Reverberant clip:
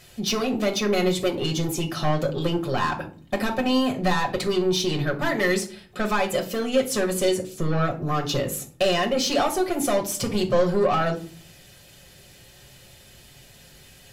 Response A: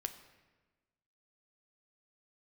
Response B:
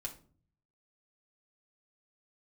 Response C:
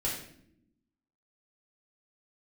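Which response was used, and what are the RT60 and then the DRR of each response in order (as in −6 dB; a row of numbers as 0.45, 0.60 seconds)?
B; 1.3 s, 0.45 s, non-exponential decay; 7.5, 0.5, −6.0 decibels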